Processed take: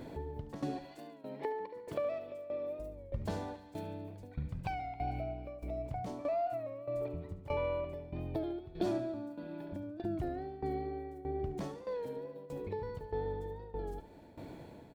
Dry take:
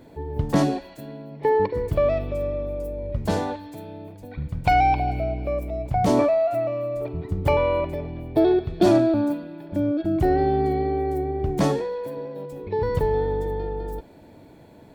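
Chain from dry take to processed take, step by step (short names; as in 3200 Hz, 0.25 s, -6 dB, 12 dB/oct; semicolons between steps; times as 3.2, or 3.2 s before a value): median filter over 3 samples; 0.85–2.8 HPF 300 Hz 12 dB/oct; compressor 2.5:1, threshold -42 dBFS, peak gain reduction 18.5 dB; tremolo saw down 1.6 Hz, depth 85%; feedback echo 72 ms, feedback 60%, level -14 dB; record warp 33 1/3 rpm, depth 100 cents; gain +2.5 dB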